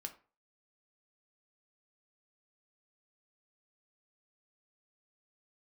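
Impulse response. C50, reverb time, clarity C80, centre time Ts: 14.0 dB, 0.40 s, 18.5 dB, 8 ms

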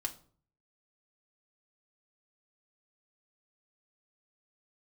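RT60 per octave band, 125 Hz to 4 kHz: 0.75, 0.60, 0.50, 0.45, 0.35, 0.30 s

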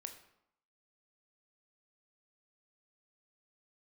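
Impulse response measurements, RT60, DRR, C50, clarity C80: 0.75 s, 5.5 dB, 10.0 dB, 12.5 dB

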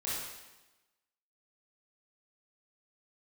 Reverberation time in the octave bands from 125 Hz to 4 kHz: 1.0, 1.1, 1.1, 1.1, 1.0, 1.0 s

